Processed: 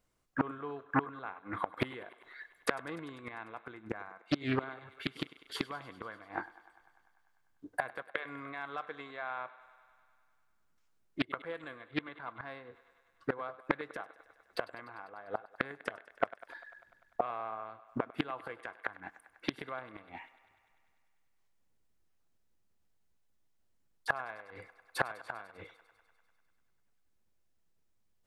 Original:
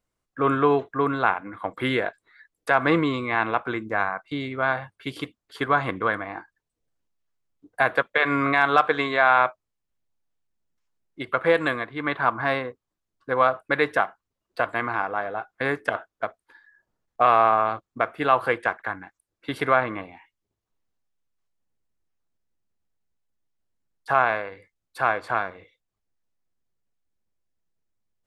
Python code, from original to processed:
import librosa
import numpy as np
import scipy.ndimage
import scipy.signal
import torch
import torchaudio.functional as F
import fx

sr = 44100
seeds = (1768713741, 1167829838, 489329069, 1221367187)

y = fx.gate_flip(x, sr, shuts_db=-19.0, range_db=-25)
y = fx.echo_thinned(y, sr, ms=99, feedback_pct=76, hz=290.0, wet_db=-18.0)
y = fx.doppler_dist(y, sr, depth_ms=0.49)
y = F.gain(torch.from_numpy(y), 3.0).numpy()